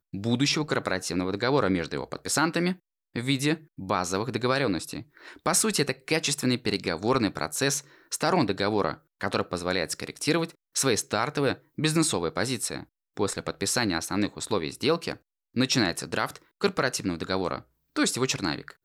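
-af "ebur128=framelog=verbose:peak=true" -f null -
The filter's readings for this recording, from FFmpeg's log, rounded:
Integrated loudness:
  I:         -27.2 LUFS
  Threshold: -37.4 LUFS
Loudness range:
  LRA:         1.6 LU
  Threshold: -47.4 LUFS
  LRA low:   -28.1 LUFS
  LRA high:  -26.5 LUFS
True peak:
  Peak:      -10.3 dBFS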